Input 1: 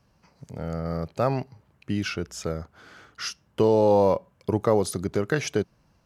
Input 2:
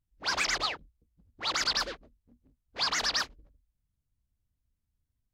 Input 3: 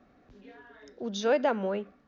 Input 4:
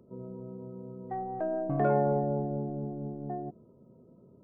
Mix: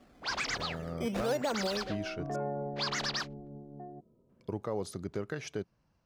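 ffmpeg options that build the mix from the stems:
ffmpeg -i stem1.wav -i stem2.wav -i stem3.wav -i stem4.wav -filter_complex "[0:a]volume=-10dB,asplit=3[link_01][link_02][link_03];[link_01]atrim=end=2.36,asetpts=PTS-STARTPTS,afade=type=out:start_time=2.356:duration=0.004:curve=hsin[link_04];[link_02]atrim=start=2.36:end=4.29,asetpts=PTS-STARTPTS,volume=0[link_05];[link_03]atrim=start=4.29,asetpts=PTS-STARTPTS,afade=type=in:duration=0.004:curve=hsin[link_06];[link_04][link_05][link_06]concat=n=3:v=0:a=1[link_07];[1:a]volume=-3.5dB[link_08];[2:a]acrusher=samples=11:mix=1:aa=0.000001:lfo=1:lforange=11:lforate=1.2,volume=1dB[link_09];[3:a]adelay=500,volume=-9.5dB[link_10];[link_07][link_08][link_09][link_10]amix=inputs=4:normalize=0,highshelf=frequency=9500:gain=-10,alimiter=limit=-23dB:level=0:latency=1:release=145" out.wav

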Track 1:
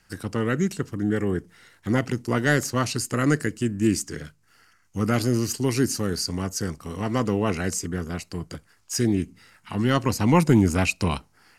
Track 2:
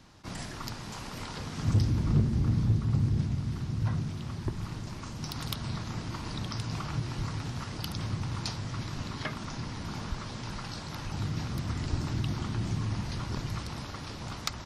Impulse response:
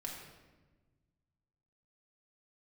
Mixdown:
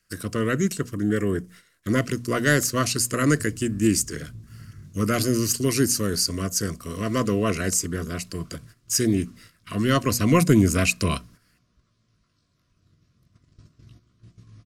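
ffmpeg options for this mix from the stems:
-filter_complex "[0:a]bandreject=frequency=60:width_type=h:width=6,bandreject=frequency=120:width_type=h:width=6,bandreject=frequency=180:width_type=h:width=6,bandreject=frequency=240:width_type=h:width=6,volume=1dB[link_01];[1:a]lowshelf=frequency=360:gain=4.5,flanger=delay=16.5:depth=6.3:speed=0.4,adelay=1650,volume=-18.5dB[link_02];[link_01][link_02]amix=inputs=2:normalize=0,agate=range=-12dB:threshold=-47dB:ratio=16:detection=peak,asuperstop=centerf=840:order=20:qfactor=3.4,highshelf=frequency=6400:gain=9"

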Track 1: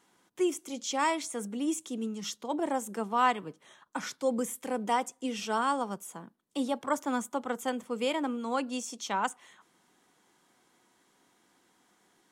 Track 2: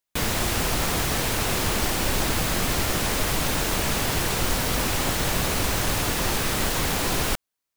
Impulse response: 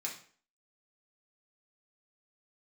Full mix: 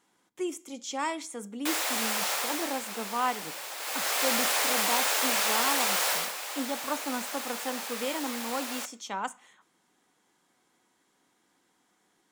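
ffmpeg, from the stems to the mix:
-filter_complex "[0:a]volume=-4dB,asplit=2[link_01][link_02];[link_02]volume=-12.5dB[link_03];[1:a]highpass=frequency=540:width=0.5412,highpass=frequency=540:width=1.3066,adelay=1500,volume=8dB,afade=type=out:start_time=2.31:duration=0.5:silence=0.334965,afade=type=in:start_time=3.77:duration=0.48:silence=0.237137,afade=type=out:start_time=6.11:duration=0.21:silence=0.298538,asplit=2[link_04][link_05];[link_05]volume=-10dB[link_06];[2:a]atrim=start_sample=2205[link_07];[link_03][link_06]amix=inputs=2:normalize=0[link_08];[link_08][link_07]afir=irnorm=-1:irlink=0[link_09];[link_01][link_04][link_09]amix=inputs=3:normalize=0"

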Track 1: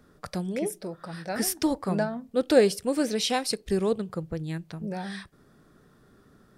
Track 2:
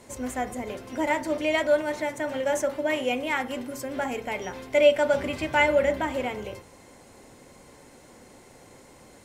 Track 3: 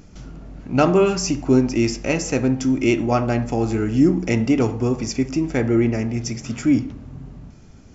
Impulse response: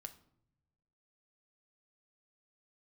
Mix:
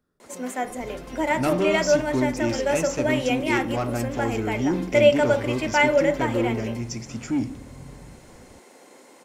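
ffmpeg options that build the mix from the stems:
-filter_complex "[0:a]volume=-17.5dB[link_01];[1:a]highpass=frequency=230:width=0.5412,highpass=frequency=230:width=1.3066,highshelf=frequency=9400:gain=-5,adelay=200,volume=2dB[link_02];[2:a]asoftclip=type=tanh:threshold=-12dB,adelay=650,volume=-5.5dB[link_03];[link_01][link_02][link_03]amix=inputs=3:normalize=0,highshelf=frequency=11000:gain=4"

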